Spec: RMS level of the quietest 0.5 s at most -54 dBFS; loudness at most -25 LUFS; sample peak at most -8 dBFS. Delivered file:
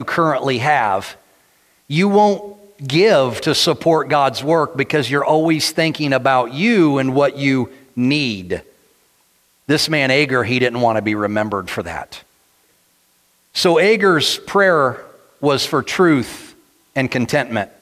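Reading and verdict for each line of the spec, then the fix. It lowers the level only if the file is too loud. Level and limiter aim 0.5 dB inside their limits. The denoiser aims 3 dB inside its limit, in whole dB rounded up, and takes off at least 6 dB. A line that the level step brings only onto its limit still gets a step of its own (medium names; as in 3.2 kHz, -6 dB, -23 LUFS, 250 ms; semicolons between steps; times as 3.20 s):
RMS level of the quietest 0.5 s -59 dBFS: pass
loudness -16.0 LUFS: fail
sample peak -3.5 dBFS: fail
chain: trim -9.5 dB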